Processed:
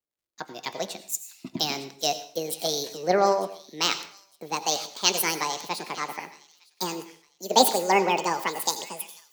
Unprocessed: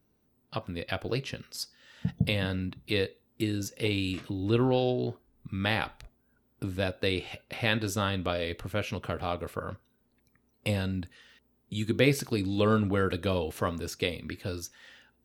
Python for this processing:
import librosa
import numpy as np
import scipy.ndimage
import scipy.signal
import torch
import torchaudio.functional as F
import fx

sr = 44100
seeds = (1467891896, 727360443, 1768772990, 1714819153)

p1 = fx.speed_glide(x, sr, from_pct=138, to_pct=189)
p2 = scipy.signal.sosfilt(scipy.signal.butter(2, 330.0, 'highpass', fs=sr, output='sos'), p1)
p3 = fx.high_shelf(p2, sr, hz=8600.0, db=9.5)
p4 = fx.dmg_crackle(p3, sr, seeds[0], per_s=160.0, level_db=-51.0)
p5 = p4 + fx.echo_wet_highpass(p4, sr, ms=908, feedback_pct=44, hz=1900.0, wet_db=-13.5, dry=0)
p6 = fx.rev_plate(p5, sr, seeds[1], rt60_s=0.61, hf_ratio=0.9, predelay_ms=75, drr_db=10.5)
p7 = fx.band_widen(p6, sr, depth_pct=70)
y = p7 * 10.0 ** (2.5 / 20.0)